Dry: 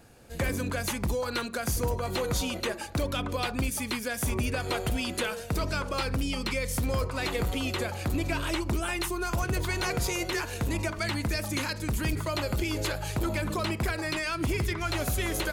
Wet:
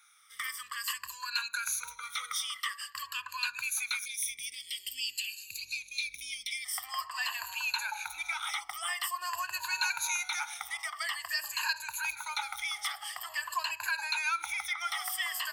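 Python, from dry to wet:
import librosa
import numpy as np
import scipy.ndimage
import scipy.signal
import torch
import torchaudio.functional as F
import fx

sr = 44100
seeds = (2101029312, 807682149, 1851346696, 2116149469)

y = fx.spec_ripple(x, sr, per_octave=1.4, drift_hz=-0.48, depth_db=19)
y = fx.ellip_highpass(y, sr, hz=fx.steps((0.0, 1100.0), (4.04, 2300.0), (6.64, 830.0)), order=4, stop_db=40)
y = y * 10.0 ** (-3.5 / 20.0)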